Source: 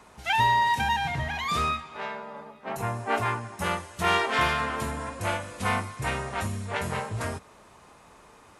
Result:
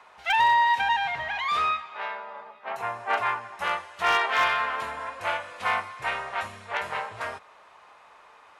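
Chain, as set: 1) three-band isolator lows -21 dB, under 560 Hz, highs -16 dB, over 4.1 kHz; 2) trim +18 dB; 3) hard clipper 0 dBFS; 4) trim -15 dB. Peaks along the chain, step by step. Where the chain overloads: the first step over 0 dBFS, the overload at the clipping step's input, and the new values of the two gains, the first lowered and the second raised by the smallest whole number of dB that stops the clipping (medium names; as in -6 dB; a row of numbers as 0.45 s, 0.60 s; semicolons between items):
-11.5 dBFS, +6.5 dBFS, 0.0 dBFS, -15.0 dBFS; step 2, 6.5 dB; step 2 +11 dB, step 4 -8 dB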